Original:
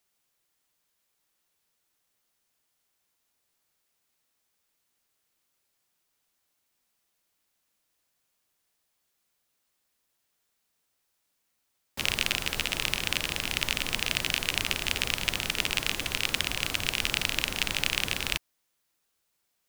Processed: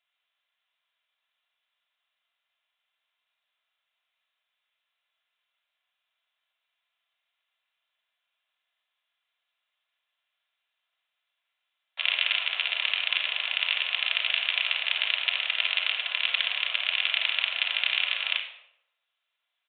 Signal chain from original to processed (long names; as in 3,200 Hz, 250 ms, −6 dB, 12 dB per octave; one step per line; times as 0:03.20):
Butterworth high-pass 490 Hz 72 dB per octave
spectral tilt +4.5 dB per octave
rectangular room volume 2,300 cubic metres, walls furnished, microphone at 3.1 metres
downsampling to 8,000 Hz
level −5 dB